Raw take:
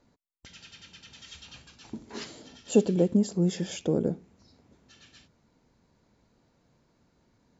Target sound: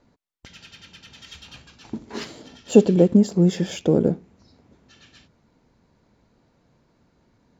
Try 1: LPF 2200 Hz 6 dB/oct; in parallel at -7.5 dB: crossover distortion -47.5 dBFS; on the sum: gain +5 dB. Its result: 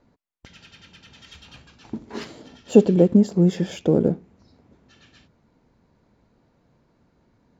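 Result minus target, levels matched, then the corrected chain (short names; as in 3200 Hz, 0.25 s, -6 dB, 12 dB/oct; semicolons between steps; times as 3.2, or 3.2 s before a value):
4000 Hz band -4.0 dB
LPF 4500 Hz 6 dB/oct; in parallel at -7.5 dB: crossover distortion -47.5 dBFS; on the sum: gain +5 dB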